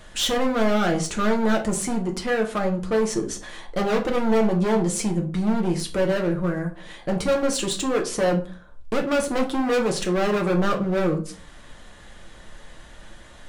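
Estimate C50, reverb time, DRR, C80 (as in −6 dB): 12.0 dB, 0.40 s, 1.5 dB, 17.5 dB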